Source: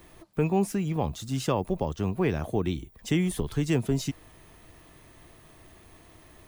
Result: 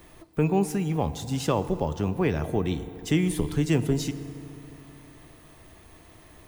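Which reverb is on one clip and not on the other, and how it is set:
feedback delay network reverb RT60 3.1 s, high-frequency decay 0.5×, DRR 12 dB
level +1.5 dB

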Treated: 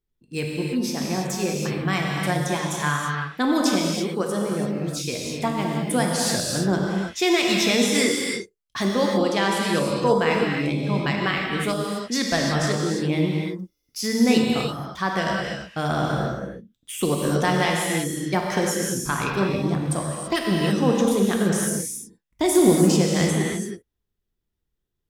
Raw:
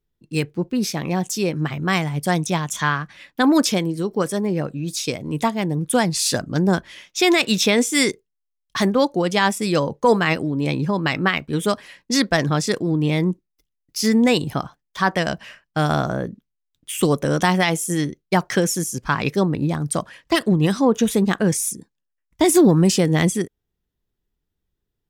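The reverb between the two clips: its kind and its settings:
reverb whose tail is shaped and stops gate 360 ms flat, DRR −1.5 dB
level −6 dB

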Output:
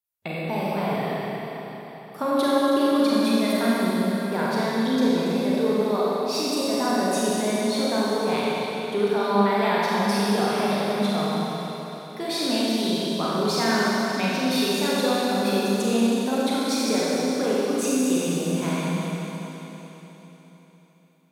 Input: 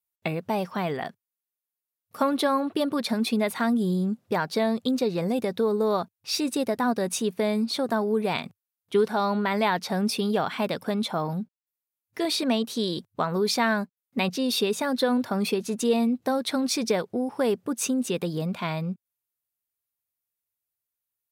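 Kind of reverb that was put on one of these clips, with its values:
four-comb reverb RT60 3.9 s, combs from 31 ms, DRR −7.5 dB
level −5 dB

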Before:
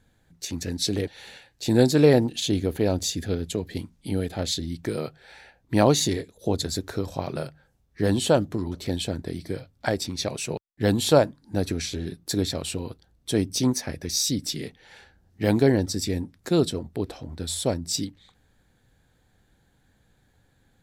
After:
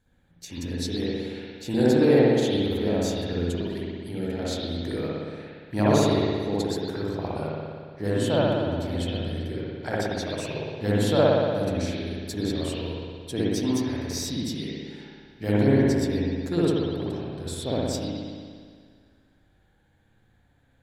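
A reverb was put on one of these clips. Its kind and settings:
spring reverb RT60 1.9 s, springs 58 ms, chirp 75 ms, DRR −8 dB
level −8.5 dB

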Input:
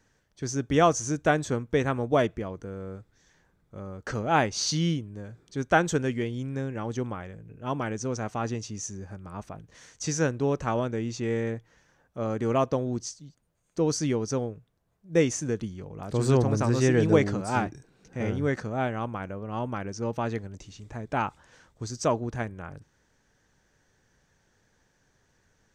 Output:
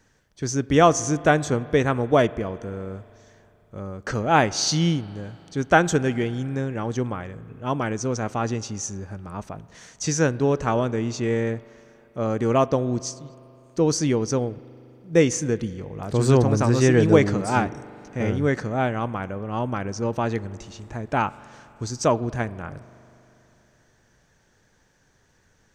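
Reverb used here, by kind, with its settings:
spring reverb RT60 3.2 s, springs 40 ms, chirp 20 ms, DRR 18.5 dB
level +5 dB

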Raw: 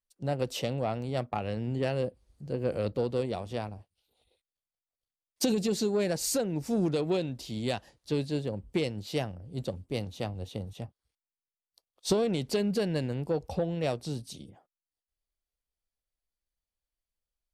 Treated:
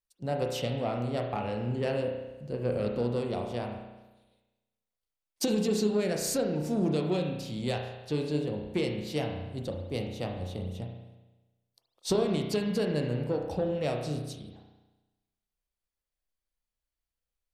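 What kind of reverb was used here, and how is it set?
spring reverb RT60 1.1 s, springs 33 ms, chirp 45 ms, DRR 2 dB
level −1.5 dB

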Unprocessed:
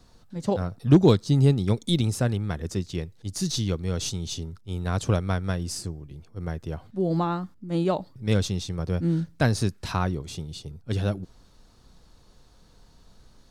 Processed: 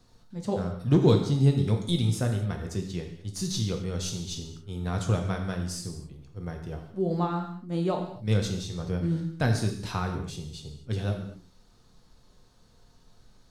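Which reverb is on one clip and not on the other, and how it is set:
reverb whose tail is shaped and stops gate 280 ms falling, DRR 3 dB
level −5 dB

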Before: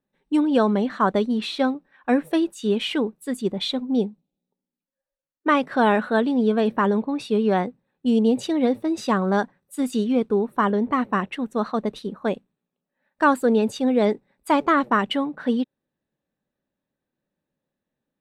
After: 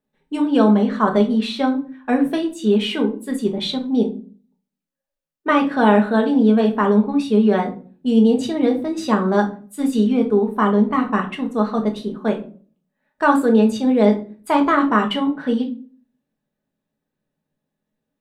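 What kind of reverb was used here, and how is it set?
rectangular room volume 290 cubic metres, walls furnished, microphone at 1.4 metres

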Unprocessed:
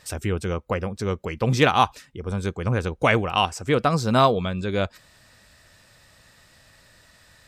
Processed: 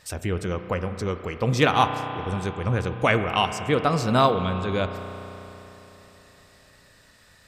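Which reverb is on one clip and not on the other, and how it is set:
spring reverb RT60 3.7 s, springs 33 ms, chirp 60 ms, DRR 8 dB
level −1.5 dB

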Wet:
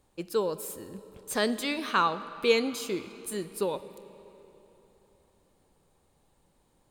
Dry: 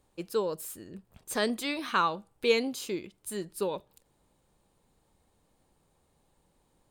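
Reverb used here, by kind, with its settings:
comb and all-pass reverb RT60 3.6 s, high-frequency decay 0.8×, pre-delay 20 ms, DRR 14 dB
level +1.5 dB

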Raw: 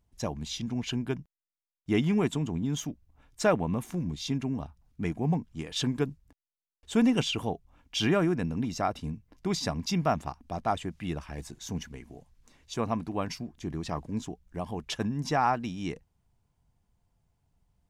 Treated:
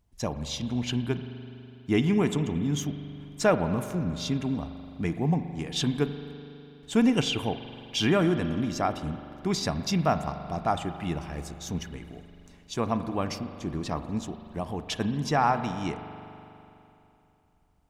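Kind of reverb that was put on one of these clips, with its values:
spring reverb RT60 3 s, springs 41 ms, chirp 20 ms, DRR 9.5 dB
level +2 dB

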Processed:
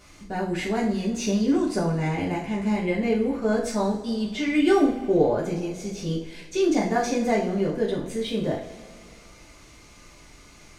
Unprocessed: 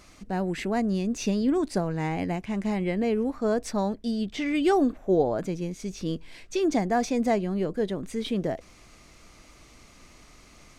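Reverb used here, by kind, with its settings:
coupled-rooms reverb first 0.41 s, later 2.2 s, from −18 dB, DRR −5 dB
level −3 dB

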